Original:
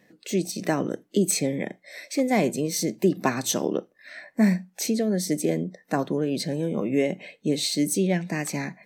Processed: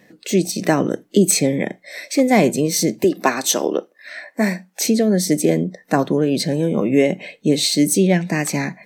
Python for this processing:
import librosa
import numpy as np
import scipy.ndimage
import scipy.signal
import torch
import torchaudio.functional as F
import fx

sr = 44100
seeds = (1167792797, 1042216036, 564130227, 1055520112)

y = fx.highpass(x, sr, hz=330.0, slope=12, at=(3.04, 4.81))
y = F.gain(torch.from_numpy(y), 8.0).numpy()